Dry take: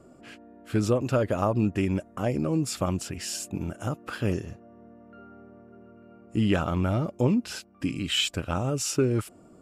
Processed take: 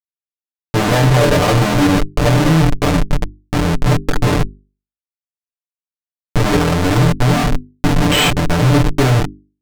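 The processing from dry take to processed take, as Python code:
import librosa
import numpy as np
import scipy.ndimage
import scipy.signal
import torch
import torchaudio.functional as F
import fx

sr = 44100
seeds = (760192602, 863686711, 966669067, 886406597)

y = fx.low_shelf(x, sr, hz=68.0, db=6.0)
y = fx.room_flutter(y, sr, wall_m=4.1, rt60_s=0.42)
y = (np.kron(scipy.signal.resample_poly(y, 1, 4), np.eye(4)[0]) * 4)[:len(y)]
y = fx.schmitt(y, sr, flips_db=-13.5)
y = fx.high_shelf(y, sr, hz=12000.0, db=-11.5)
y = fx.hum_notches(y, sr, base_hz=50, count=8)
y = y + 0.73 * np.pad(y, (int(6.8 * sr / 1000.0), 0))[:len(y)]
y = F.gain(torch.from_numpy(y), 6.0).numpy()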